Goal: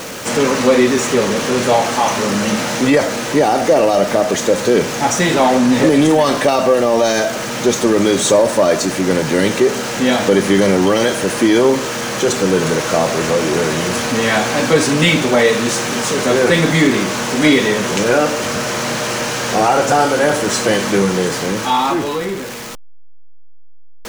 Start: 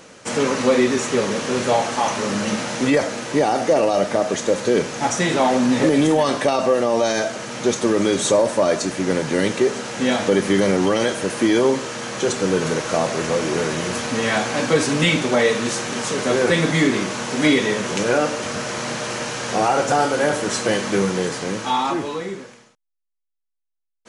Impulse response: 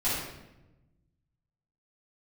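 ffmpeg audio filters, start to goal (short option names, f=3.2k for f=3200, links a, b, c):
-af "aeval=exprs='val(0)+0.5*0.0398*sgn(val(0))':c=same,volume=4dB"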